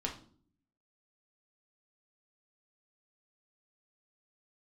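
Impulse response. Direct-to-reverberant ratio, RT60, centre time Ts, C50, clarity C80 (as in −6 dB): −0.5 dB, 0.50 s, 18 ms, 9.5 dB, 14.5 dB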